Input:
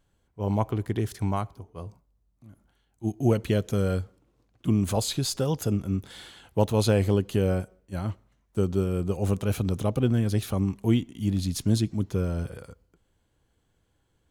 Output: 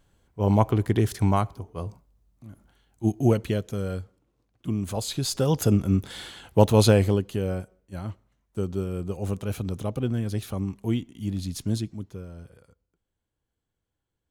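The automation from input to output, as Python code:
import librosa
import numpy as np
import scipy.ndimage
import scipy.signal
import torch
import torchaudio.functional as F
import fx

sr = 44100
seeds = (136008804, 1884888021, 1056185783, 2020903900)

y = fx.gain(x, sr, db=fx.line((3.05, 5.5), (3.71, -4.5), (4.92, -4.5), (5.61, 5.5), (6.85, 5.5), (7.34, -3.5), (11.75, -3.5), (12.25, -13.0)))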